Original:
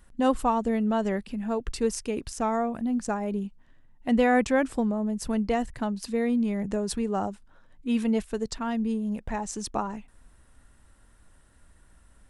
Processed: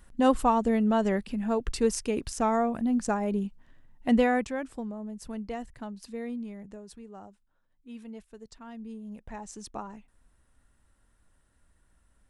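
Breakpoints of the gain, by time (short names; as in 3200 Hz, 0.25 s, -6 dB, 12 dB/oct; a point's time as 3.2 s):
4.14 s +1 dB
4.55 s -10 dB
6.3 s -10 dB
6.9 s -18 dB
8.31 s -18 dB
9.43 s -9 dB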